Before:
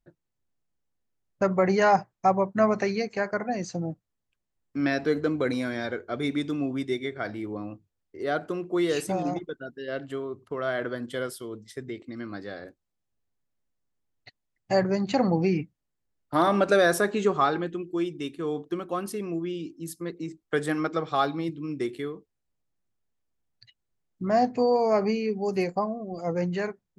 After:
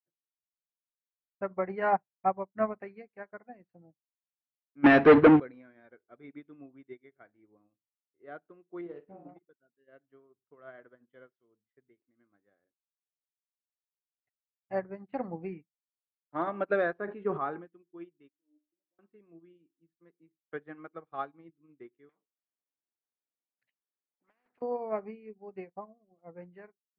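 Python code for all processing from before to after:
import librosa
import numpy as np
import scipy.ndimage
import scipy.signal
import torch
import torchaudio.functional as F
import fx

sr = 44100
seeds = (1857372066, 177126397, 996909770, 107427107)

y = fx.chain(x, sr, fx.high_shelf(hz=4700.0, db=11.5),
    fx.leveller(passes=5), at=(4.84, 5.4))
y = fx.chain(y, sr, fx.self_delay(depth_ms=0.057),
    fx.peak_eq(hz=2900.0, db=-12.5, octaves=2.5),
    fx.room_flutter(wall_m=7.9, rt60_s=0.43), at=(8.81, 9.29))
y = fx.chain(y, sr, fx.high_shelf(hz=3100.0, db=-10.0),
    fx.sustainer(db_per_s=32.0), at=(16.93, 17.65))
y = fx.chain(y, sr, fx.steep_lowpass(hz=780.0, slope=36),
    fx.stiff_resonator(f0_hz=300.0, decay_s=0.33, stiffness=0.008), at=(18.29, 18.99))
y = fx.chain(y, sr, fx.highpass(hz=230.0, slope=24),
    fx.over_compress(threshold_db=-29.0, ratio=-1.0),
    fx.spectral_comp(ratio=4.0), at=(22.09, 24.62))
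y = scipy.signal.sosfilt(scipy.signal.butter(4, 2400.0, 'lowpass', fs=sr, output='sos'), y)
y = fx.low_shelf(y, sr, hz=88.0, db=-10.5)
y = fx.upward_expand(y, sr, threshold_db=-40.0, expansion=2.5)
y = y * 10.0 ** (1.5 / 20.0)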